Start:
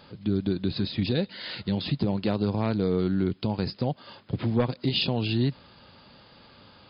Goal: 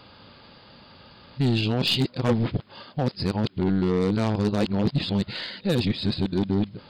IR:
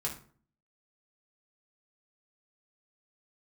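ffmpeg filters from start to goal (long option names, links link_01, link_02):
-af "areverse,aeval=exprs='0.188*(cos(1*acos(clip(val(0)/0.188,-1,1)))-cos(1*PI/2))+0.0119*(cos(4*acos(clip(val(0)/0.188,-1,1)))-cos(4*PI/2))+0.0266*(cos(5*acos(clip(val(0)/0.188,-1,1)))-cos(5*PI/2))+0.0133*(cos(7*acos(clip(val(0)/0.188,-1,1)))-cos(7*PI/2))':channel_layout=same,volume=1.5dB"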